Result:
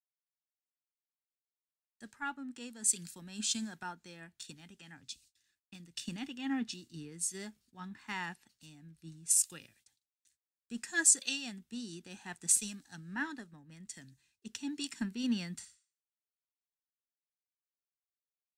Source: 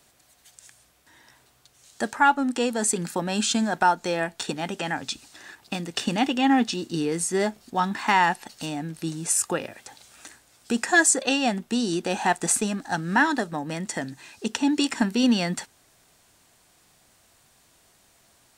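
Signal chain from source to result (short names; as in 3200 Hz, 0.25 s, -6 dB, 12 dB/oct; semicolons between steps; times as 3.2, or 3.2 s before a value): gate -47 dBFS, range -47 dB; spectral repair 15.62–16.32, 980–10000 Hz both; passive tone stack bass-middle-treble 6-0-2; three-band expander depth 100%; gain +1.5 dB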